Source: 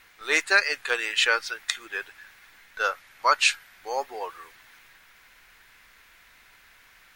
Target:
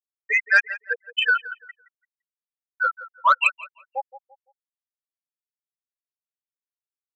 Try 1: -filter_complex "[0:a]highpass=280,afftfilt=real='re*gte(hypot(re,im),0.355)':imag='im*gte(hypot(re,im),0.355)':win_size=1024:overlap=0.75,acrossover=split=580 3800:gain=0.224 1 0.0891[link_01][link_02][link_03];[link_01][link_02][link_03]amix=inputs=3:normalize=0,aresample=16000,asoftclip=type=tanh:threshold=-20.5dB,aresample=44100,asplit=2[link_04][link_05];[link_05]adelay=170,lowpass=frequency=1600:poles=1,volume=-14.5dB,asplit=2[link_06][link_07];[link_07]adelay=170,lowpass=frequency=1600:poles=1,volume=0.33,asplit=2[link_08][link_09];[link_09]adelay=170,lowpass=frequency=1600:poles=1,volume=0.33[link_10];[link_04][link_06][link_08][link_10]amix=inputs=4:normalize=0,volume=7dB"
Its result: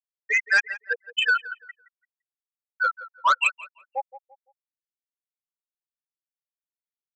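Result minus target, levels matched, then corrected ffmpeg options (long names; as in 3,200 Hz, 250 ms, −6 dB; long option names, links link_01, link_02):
soft clipping: distortion +8 dB
-filter_complex "[0:a]highpass=280,afftfilt=real='re*gte(hypot(re,im),0.355)':imag='im*gte(hypot(re,im),0.355)':win_size=1024:overlap=0.75,acrossover=split=580 3800:gain=0.224 1 0.0891[link_01][link_02][link_03];[link_01][link_02][link_03]amix=inputs=3:normalize=0,aresample=16000,asoftclip=type=tanh:threshold=-14dB,aresample=44100,asplit=2[link_04][link_05];[link_05]adelay=170,lowpass=frequency=1600:poles=1,volume=-14.5dB,asplit=2[link_06][link_07];[link_07]adelay=170,lowpass=frequency=1600:poles=1,volume=0.33,asplit=2[link_08][link_09];[link_09]adelay=170,lowpass=frequency=1600:poles=1,volume=0.33[link_10];[link_04][link_06][link_08][link_10]amix=inputs=4:normalize=0,volume=7dB"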